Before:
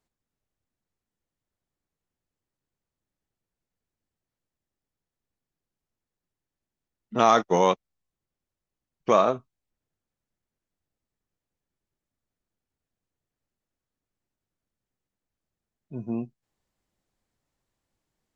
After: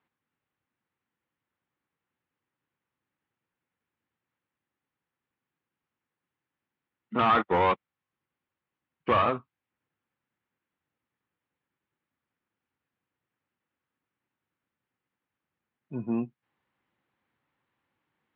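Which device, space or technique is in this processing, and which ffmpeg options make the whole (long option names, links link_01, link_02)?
overdrive pedal into a guitar cabinet: -filter_complex "[0:a]asplit=2[link_01][link_02];[link_02]highpass=frequency=720:poles=1,volume=22dB,asoftclip=type=tanh:threshold=-5dB[link_03];[link_01][link_03]amix=inputs=2:normalize=0,lowpass=frequency=4600:poles=1,volume=-6dB,bass=frequency=250:gain=6,treble=frequency=4000:gain=-12,highpass=88,equalizer=frequency=190:width_type=q:width=4:gain=-3,equalizer=frequency=420:width_type=q:width=4:gain=-4,equalizer=frequency=650:width_type=q:width=4:gain=-9,lowpass=frequency=3500:width=0.5412,lowpass=frequency=3500:width=1.3066,volume=-7dB"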